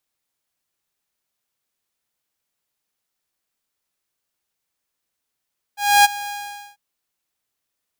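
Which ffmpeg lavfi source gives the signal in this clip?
ffmpeg -f lavfi -i "aevalsrc='0.531*(2*mod(818*t,1)-1)':duration=0.994:sample_rate=44100,afade=type=in:duration=0.276,afade=type=out:start_time=0.276:duration=0.022:silence=0.119,afade=type=out:start_time=0.52:duration=0.474" out.wav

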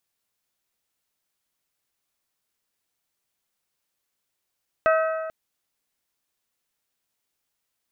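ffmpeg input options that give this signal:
ffmpeg -f lavfi -i "aevalsrc='0.158*pow(10,-3*t/1.75)*sin(2*PI*641*t)+0.0944*pow(10,-3*t/1.421)*sin(2*PI*1282*t)+0.0562*pow(10,-3*t/1.346)*sin(2*PI*1538.4*t)+0.0335*pow(10,-3*t/1.259)*sin(2*PI*1923*t)+0.02*pow(10,-3*t/1.155)*sin(2*PI*2564*t)':duration=0.44:sample_rate=44100" out.wav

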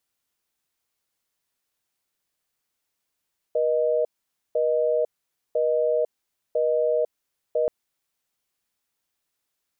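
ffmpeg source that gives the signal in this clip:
ffmpeg -f lavfi -i "aevalsrc='0.0794*(sin(2*PI*480*t)+sin(2*PI*620*t))*clip(min(mod(t,1),0.5-mod(t,1))/0.005,0,1)':duration=4.13:sample_rate=44100" out.wav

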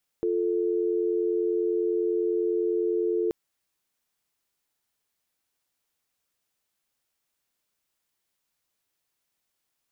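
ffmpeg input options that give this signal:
ffmpeg -f lavfi -i "aevalsrc='0.0531*(sin(2*PI*350*t)+sin(2*PI*440*t))':duration=3.08:sample_rate=44100" out.wav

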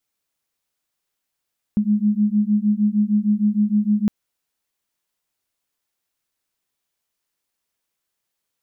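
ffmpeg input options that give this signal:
ffmpeg -f lavfi -i "aevalsrc='0.119*(sin(2*PI*206*t)+sin(2*PI*212.5*t))':duration=2.31:sample_rate=44100" out.wav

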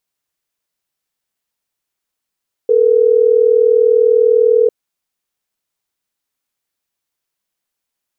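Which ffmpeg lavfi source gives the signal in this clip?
ffmpeg -f lavfi -i "aevalsrc='0.299*(sin(2*PI*440*t)+sin(2*PI*480*t))*clip(min(mod(t,6),2-mod(t,6))/0.005,0,1)':duration=3.12:sample_rate=44100" out.wav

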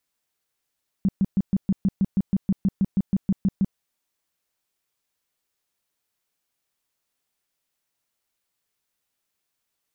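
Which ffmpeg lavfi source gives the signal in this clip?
ffmpeg -f lavfi -i "aevalsrc='0.158*sin(2*PI*194*mod(t,0.16))*lt(mod(t,0.16),7/194)':duration=2.72:sample_rate=44100" out.wav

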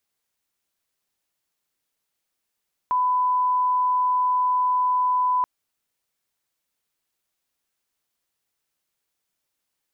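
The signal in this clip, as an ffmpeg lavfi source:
ffmpeg -f lavfi -i "sine=frequency=1000:duration=2.53:sample_rate=44100,volume=0.06dB" out.wav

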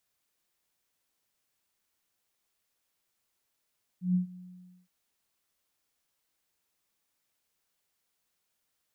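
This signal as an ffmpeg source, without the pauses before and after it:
ffmpeg -f lavfi -i "aevalsrc='0.0841*sin(2*PI*181*t)':duration=0.868:sample_rate=44100,afade=type=in:duration=0.136,afade=type=out:start_time=0.136:duration=0.116:silence=0.0841,afade=type=out:start_time=0.35:duration=0.518" out.wav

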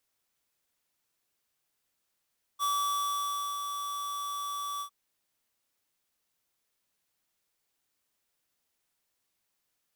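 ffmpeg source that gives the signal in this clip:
ffmpeg -f lavfi -i "aevalsrc='0.0376*(2*lt(mod(1150*t,1),0.5)-1)':duration=2.305:sample_rate=44100,afade=type=in:duration=0.041,afade=type=out:start_time=0.041:duration=0.949:silence=0.447,afade=type=out:start_time=2.22:duration=0.085" out.wav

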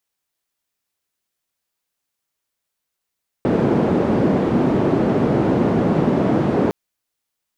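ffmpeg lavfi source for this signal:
ffmpeg -f lavfi -i "anoisesrc=color=white:duration=3.26:sample_rate=44100:seed=1,highpass=frequency=170,lowpass=frequency=310,volume=8.9dB" out.wav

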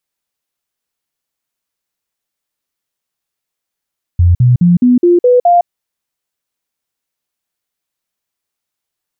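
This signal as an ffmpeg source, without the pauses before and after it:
ffmpeg -f lavfi -i "aevalsrc='0.596*clip(min(mod(t,0.21),0.16-mod(t,0.21))/0.005,0,1)*sin(2*PI*87.4*pow(2,floor(t/0.21)/2)*mod(t,0.21))':duration=1.47:sample_rate=44100" out.wav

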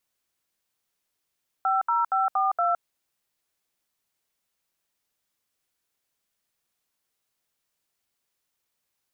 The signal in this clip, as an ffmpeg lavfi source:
ffmpeg -f lavfi -i "aevalsrc='0.0708*clip(min(mod(t,0.234),0.164-mod(t,0.234))/0.002,0,1)*(eq(floor(t/0.234),0)*(sin(2*PI*770*mod(t,0.234))+sin(2*PI*1336*mod(t,0.234)))+eq(floor(t/0.234),1)*(sin(2*PI*941*mod(t,0.234))+sin(2*PI*1336*mod(t,0.234)))+eq(floor(t/0.234),2)*(sin(2*PI*770*mod(t,0.234))+sin(2*PI*1336*mod(t,0.234)))+eq(floor(t/0.234),3)*(sin(2*PI*770*mod(t,0.234))+sin(2*PI*1209*mod(t,0.234)))+eq(floor(t/0.234),4)*(sin(2*PI*697*mod(t,0.234))+sin(2*PI*1336*mod(t,0.234))))':duration=1.17:sample_rate=44100" out.wav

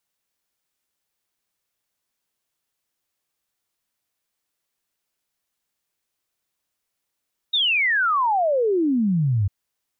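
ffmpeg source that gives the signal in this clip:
ffmpeg -f lavfi -i "aevalsrc='0.141*clip(min(t,1.95-t)/0.01,0,1)*sin(2*PI*3800*1.95/log(93/3800)*(exp(log(93/3800)*t/1.95)-1))':duration=1.95:sample_rate=44100" out.wav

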